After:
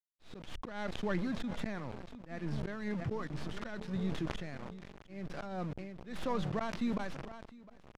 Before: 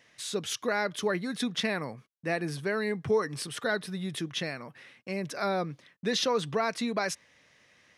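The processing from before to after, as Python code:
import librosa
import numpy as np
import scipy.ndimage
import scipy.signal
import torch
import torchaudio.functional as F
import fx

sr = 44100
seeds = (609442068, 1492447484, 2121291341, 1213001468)

y = fx.tracing_dist(x, sr, depth_ms=0.3)
y = fx.dynamic_eq(y, sr, hz=440.0, q=2.7, threshold_db=-44.0, ratio=4.0, max_db=-8)
y = fx.echo_wet_lowpass(y, sr, ms=886, feedback_pct=50, hz=440.0, wet_db=-11.0)
y = np.where(np.abs(y) >= 10.0 ** (-38.0 / 20.0), y, 0.0)
y = y + 10.0 ** (-22.5 / 20.0) * np.pad(y, (int(705 * sr / 1000.0), 0))[:len(y)]
y = fx.auto_swell(y, sr, attack_ms=280.0)
y = scipy.signal.sosfilt(scipy.signal.bessel(2, 5400.0, 'lowpass', norm='mag', fs=sr, output='sos'), y)
y = fx.tilt_eq(y, sr, slope=-2.0)
y = fx.sustainer(y, sr, db_per_s=35.0)
y = y * librosa.db_to_amplitude(-5.5)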